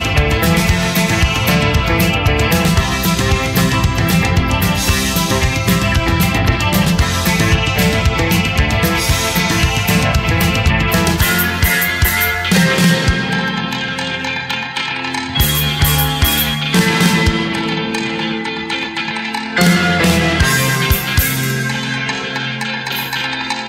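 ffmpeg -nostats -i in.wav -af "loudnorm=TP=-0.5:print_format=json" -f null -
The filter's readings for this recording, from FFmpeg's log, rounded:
"input_i" : "-14.5",
"input_tp" : "-2.2",
"input_lra" : "3.6",
"input_thresh" : "-24.5",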